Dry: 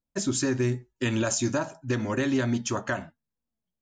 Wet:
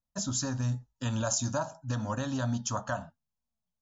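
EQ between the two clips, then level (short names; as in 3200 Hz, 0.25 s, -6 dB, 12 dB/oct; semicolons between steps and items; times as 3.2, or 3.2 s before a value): brick-wall FIR low-pass 7400 Hz; fixed phaser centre 890 Hz, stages 4; 0.0 dB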